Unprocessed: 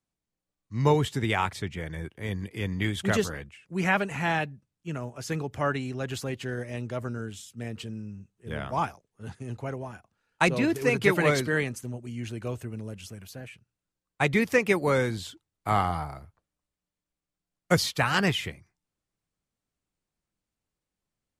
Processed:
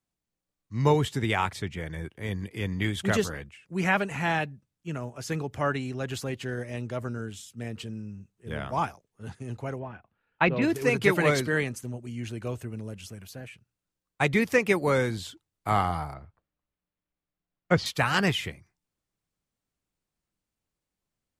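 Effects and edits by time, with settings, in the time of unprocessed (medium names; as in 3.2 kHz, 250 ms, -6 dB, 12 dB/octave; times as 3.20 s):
9.79–10.62 s: low-pass 3.2 kHz 24 dB/octave
16.14–17.86 s: low-pass 3.1 kHz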